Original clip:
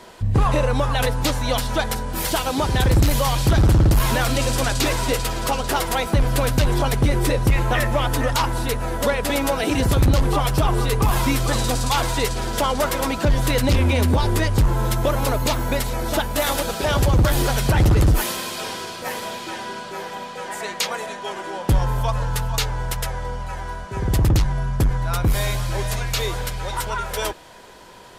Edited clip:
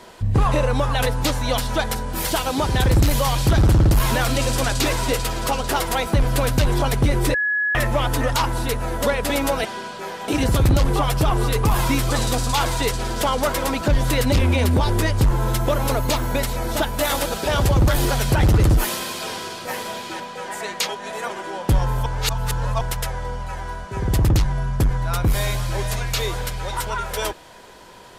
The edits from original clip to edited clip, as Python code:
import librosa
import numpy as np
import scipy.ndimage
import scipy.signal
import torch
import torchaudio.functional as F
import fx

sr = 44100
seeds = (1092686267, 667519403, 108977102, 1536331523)

y = fx.edit(x, sr, fx.bleep(start_s=7.34, length_s=0.41, hz=1690.0, db=-18.0),
    fx.move(start_s=19.57, length_s=0.63, to_s=9.65),
    fx.reverse_span(start_s=20.89, length_s=0.41),
    fx.reverse_span(start_s=22.06, length_s=0.75), tone=tone)